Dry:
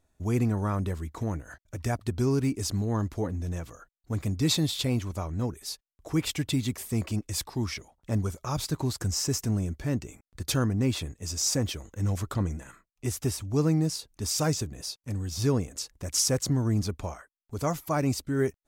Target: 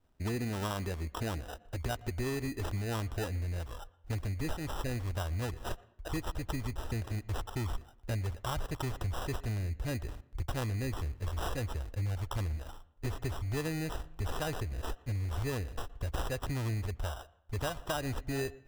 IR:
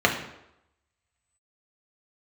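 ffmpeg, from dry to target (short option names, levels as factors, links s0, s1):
-filter_complex "[0:a]adynamicequalizer=threshold=0.00631:dfrequency=720:dqfactor=0.91:tfrequency=720:tqfactor=0.91:attack=5:release=100:ratio=0.375:range=3.5:mode=boostabove:tftype=bell,acrusher=samples=20:mix=1:aa=0.000001,asubboost=boost=10.5:cutoff=56,acompressor=threshold=0.0251:ratio=6,asplit=2[s0][s1];[1:a]atrim=start_sample=2205,adelay=116[s2];[s1][s2]afir=irnorm=-1:irlink=0,volume=0.0126[s3];[s0][s3]amix=inputs=2:normalize=0"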